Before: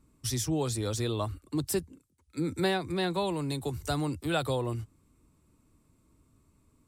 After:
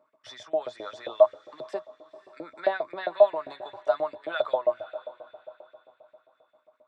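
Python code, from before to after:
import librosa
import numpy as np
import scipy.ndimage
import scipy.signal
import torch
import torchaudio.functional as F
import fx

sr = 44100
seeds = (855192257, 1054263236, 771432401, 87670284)

p1 = fx.spacing_loss(x, sr, db_at_10k=40)
p2 = fx.level_steps(p1, sr, step_db=22)
p3 = p1 + (p2 * librosa.db_to_amplitude(3.0))
p4 = fx.peak_eq(p3, sr, hz=2600.0, db=-4.0, octaves=0.45)
p5 = p4 + fx.echo_diffused(p4, sr, ms=524, feedback_pct=40, wet_db=-15.5, dry=0)
p6 = fx.filter_lfo_highpass(p5, sr, shape='saw_up', hz=7.5, low_hz=560.0, high_hz=2300.0, q=3.1)
y = fx.small_body(p6, sr, hz=(620.0, 3500.0), ring_ms=90, db=17)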